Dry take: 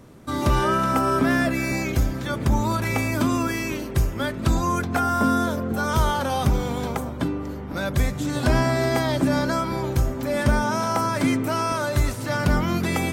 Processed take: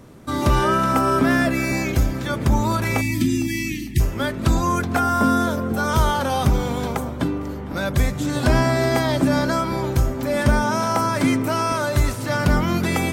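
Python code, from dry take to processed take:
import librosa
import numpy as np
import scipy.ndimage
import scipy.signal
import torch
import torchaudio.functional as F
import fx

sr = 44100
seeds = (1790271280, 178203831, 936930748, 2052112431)

y = fx.spec_erase(x, sr, start_s=3.01, length_s=0.99, low_hz=380.0, high_hz=1700.0)
y = fx.echo_thinned(y, sr, ms=455, feedback_pct=30, hz=420.0, wet_db=-21.5)
y = y * 10.0 ** (2.5 / 20.0)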